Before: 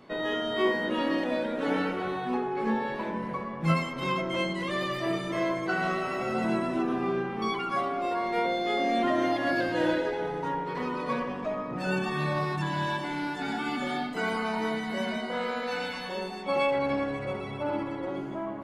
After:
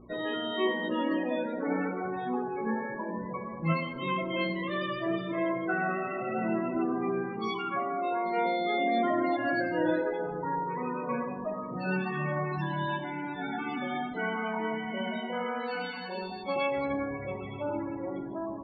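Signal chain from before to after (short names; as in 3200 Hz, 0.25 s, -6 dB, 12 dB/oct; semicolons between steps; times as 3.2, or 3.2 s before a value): buzz 60 Hz, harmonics 6, -53 dBFS -1 dB/oct; loudest bins only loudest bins 32; non-linear reverb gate 0.22 s falling, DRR 11 dB; gain -2 dB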